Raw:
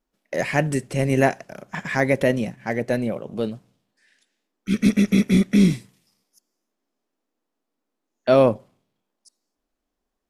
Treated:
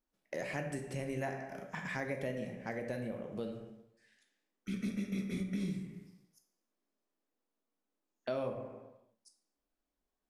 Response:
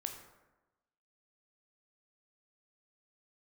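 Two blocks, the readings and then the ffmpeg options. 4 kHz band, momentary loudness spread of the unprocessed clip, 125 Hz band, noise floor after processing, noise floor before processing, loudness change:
-18.0 dB, 15 LU, -18.0 dB, under -85 dBFS, -81 dBFS, -18.5 dB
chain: -filter_complex "[1:a]atrim=start_sample=2205,asetrate=61740,aresample=44100[s0];[0:a][s0]afir=irnorm=-1:irlink=0,acompressor=threshold=0.02:ratio=3,volume=0.631"

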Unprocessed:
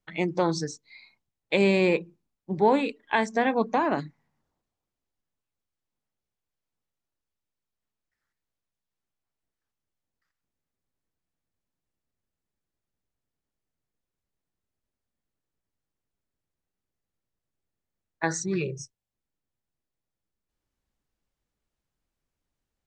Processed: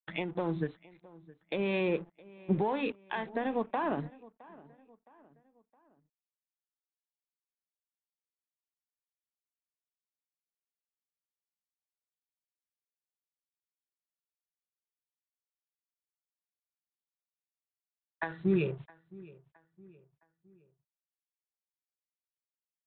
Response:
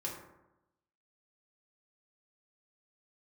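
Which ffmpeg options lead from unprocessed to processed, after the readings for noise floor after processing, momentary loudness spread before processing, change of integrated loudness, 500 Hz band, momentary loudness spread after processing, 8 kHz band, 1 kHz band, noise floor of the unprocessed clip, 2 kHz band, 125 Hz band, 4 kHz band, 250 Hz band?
under -85 dBFS, 14 LU, -7.5 dB, -7.5 dB, 19 LU, under -35 dB, -9.0 dB, under -85 dBFS, -9.0 dB, -3.5 dB, -9.5 dB, -5.5 dB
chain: -filter_complex "[0:a]equalizer=f=2200:t=o:w=0.25:g=-5.5,acompressor=threshold=0.0501:ratio=6,alimiter=limit=0.0794:level=0:latency=1:release=240,acrossover=split=610[s0][s1];[s0]aeval=exprs='val(0)*(1-0.5/2+0.5/2*cos(2*PI*2*n/s))':c=same[s2];[s1]aeval=exprs='val(0)*(1-0.5/2-0.5/2*cos(2*PI*2*n/s))':c=same[s3];[s2][s3]amix=inputs=2:normalize=0,aeval=exprs='sgn(val(0))*max(abs(val(0))-0.002,0)':c=same,asplit=2[s4][s5];[s5]adelay=665,lowpass=f=2900:p=1,volume=0.0841,asplit=2[s6][s7];[s7]adelay=665,lowpass=f=2900:p=1,volume=0.45,asplit=2[s8][s9];[s9]adelay=665,lowpass=f=2900:p=1,volume=0.45[s10];[s4][s6][s8][s10]amix=inputs=4:normalize=0,aresample=8000,aresample=44100,volume=1.78"

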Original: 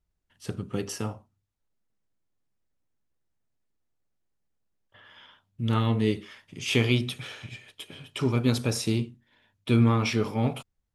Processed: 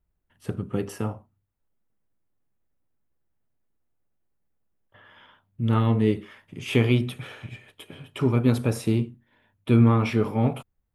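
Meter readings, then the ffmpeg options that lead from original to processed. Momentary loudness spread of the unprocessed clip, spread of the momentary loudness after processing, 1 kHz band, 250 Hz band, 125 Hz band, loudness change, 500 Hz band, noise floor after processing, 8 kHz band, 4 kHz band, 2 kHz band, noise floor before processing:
19 LU, 20 LU, +2.5 dB, +3.5 dB, +3.5 dB, +3.0 dB, +3.5 dB, -76 dBFS, -6.5 dB, -5.0 dB, -1.0 dB, -79 dBFS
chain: -af "equalizer=f=5400:w=0.7:g=-13.5,volume=1.5"

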